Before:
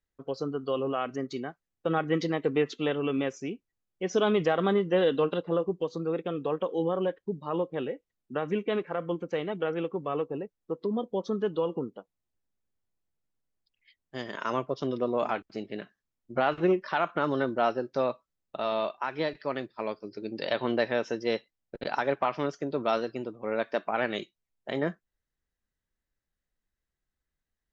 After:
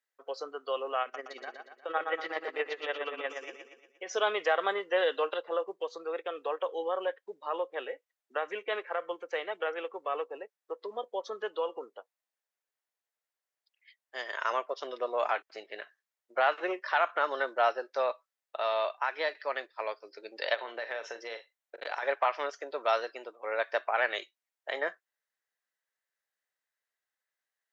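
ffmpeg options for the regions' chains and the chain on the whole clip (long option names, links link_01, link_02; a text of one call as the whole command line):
ffmpeg -i in.wav -filter_complex "[0:a]asettb=1/sr,asplit=3[link_01][link_02][link_03];[link_01]atrim=end=1.024[link_04];[link_02]atrim=start=1.02:end=4.09,asetpts=PTS-STARTPTS,afade=type=in:duration=0.004:curve=qsin,afade=type=out:start_time=3.066:duration=0.004:curve=qsin,acrossover=split=4300[link_05][link_06];[link_06]acompressor=threshold=-59dB:ratio=4:attack=1:release=60[link_07];[link_05][link_07]amix=inputs=2:normalize=0,aecho=1:1:119|238|357|476|595|714:0.531|0.265|0.133|0.0664|0.0332|0.0166,atrim=end_sample=135387,tremolo=f=17:d=0.61[link_08];[link_03]atrim=start=4.086[link_09];[link_04][link_08]acrossfade=duration=0.004:curve1=hsin:curve2=qsin[link_10];[link_10][link_09]acrossfade=duration=0.004:curve1=qsin:curve2=hsin,asettb=1/sr,asplit=3[link_11][link_12][link_13];[link_11]atrim=end=20.544[link_14];[link_12]atrim=start=20.54:end=22.03,asetpts=PTS-STARTPTS,afade=type=in:duration=0.004:curve=qsin,afade=type=out:start_time=1.486:duration=0.004:curve=qsin,acompressor=threshold=-30dB:ratio=12:attack=3.2:release=140:knee=1:detection=peak,bandreject=frequency=4900:width=11,asplit=2[link_15][link_16];[link_16]adelay=43,volume=-10.5dB[link_17];[link_15][link_17]amix=inputs=2:normalize=0,atrim=end_sample=65709[link_18];[link_13]atrim=start=22.026[link_19];[link_14][link_18]acrossfade=duration=0.004:curve1=hsin:curve2=qsin[link_20];[link_20][link_19]acrossfade=duration=0.004:curve1=qsin:curve2=hsin,highpass=frequency=520:width=0.5412,highpass=frequency=520:width=1.3066,equalizer=frequency=1800:width_type=o:width=0.64:gain=5" out.wav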